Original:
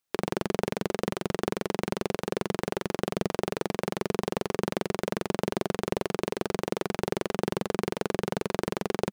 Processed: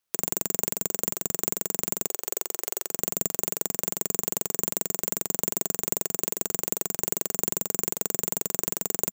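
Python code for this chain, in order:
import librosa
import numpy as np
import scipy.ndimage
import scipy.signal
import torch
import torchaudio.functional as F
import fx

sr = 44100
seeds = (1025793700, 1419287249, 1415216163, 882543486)

y = fx.highpass(x, sr, hz=350.0, slope=24, at=(2.07, 2.91))
y = (np.kron(y[::6], np.eye(6)[0]) * 6)[:len(y)]
y = y * 10.0 ** (-6.5 / 20.0)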